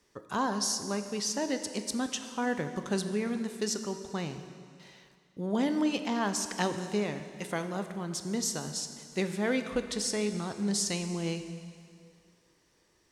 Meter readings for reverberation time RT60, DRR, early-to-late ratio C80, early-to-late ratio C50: 2.3 s, 8.0 dB, 10.0 dB, 9.0 dB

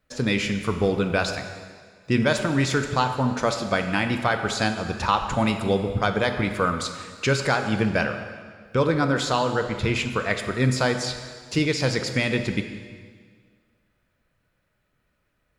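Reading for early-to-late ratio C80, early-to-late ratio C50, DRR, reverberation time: 9.0 dB, 8.0 dB, 6.5 dB, 1.8 s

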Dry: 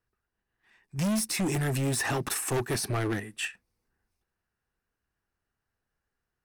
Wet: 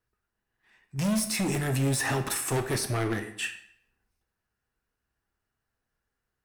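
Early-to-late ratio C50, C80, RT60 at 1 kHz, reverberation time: 11.0 dB, 13.5 dB, 0.70 s, 0.65 s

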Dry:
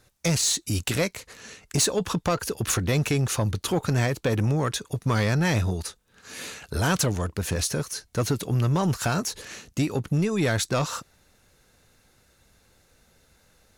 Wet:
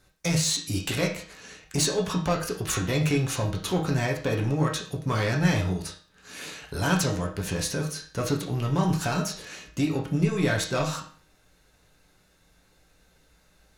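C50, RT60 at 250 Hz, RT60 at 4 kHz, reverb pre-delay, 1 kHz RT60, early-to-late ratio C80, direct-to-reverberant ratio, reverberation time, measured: 8.0 dB, 0.50 s, 0.40 s, 6 ms, 0.45 s, 12.5 dB, −0.5 dB, 0.45 s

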